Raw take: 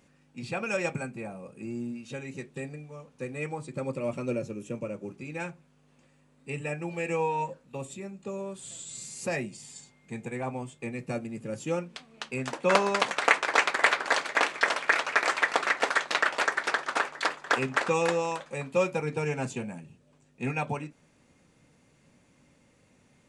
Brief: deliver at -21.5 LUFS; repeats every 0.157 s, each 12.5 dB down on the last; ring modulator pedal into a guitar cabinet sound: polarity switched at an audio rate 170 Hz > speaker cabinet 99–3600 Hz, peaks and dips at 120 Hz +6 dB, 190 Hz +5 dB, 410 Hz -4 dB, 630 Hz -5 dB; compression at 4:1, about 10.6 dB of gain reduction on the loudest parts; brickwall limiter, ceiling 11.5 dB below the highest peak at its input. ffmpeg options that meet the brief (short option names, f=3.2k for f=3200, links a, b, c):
-af "acompressor=threshold=-30dB:ratio=4,alimiter=level_in=1.5dB:limit=-24dB:level=0:latency=1,volume=-1.5dB,aecho=1:1:157|314|471:0.237|0.0569|0.0137,aeval=exprs='val(0)*sgn(sin(2*PI*170*n/s))':c=same,highpass=99,equalizer=f=120:t=q:w=4:g=6,equalizer=f=190:t=q:w=4:g=5,equalizer=f=410:t=q:w=4:g=-4,equalizer=f=630:t=q:w=4:g=-5,lowpass=f=3.6k:w=0.5412,lowpass=f=3.6k:w=1.3066,volume=17dB"